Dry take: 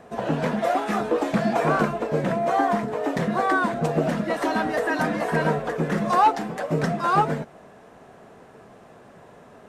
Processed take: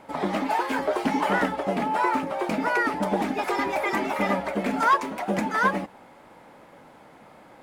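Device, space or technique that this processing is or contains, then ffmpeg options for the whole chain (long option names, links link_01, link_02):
nightcore: -af "asetrate=56007,aresample=44100,volume=-2dB"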